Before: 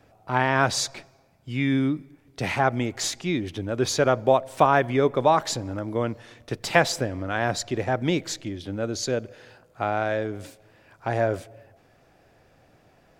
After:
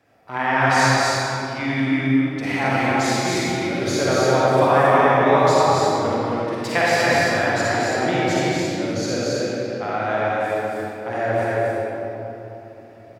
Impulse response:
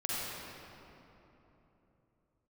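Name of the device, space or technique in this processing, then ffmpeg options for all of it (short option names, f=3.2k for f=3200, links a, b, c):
stadium PA: -filter_complex "[0:a]highpass=f=190:p=1,equalizer=f=2k:t=o:w=0.38:g=5,aecho=1:1:233.2|271.1:0.562|0.631[a];[1:a]atrim=start_sample=2205[b];[a][b]afir=irnorm=-1:irlink=0,volume=-2.5dB"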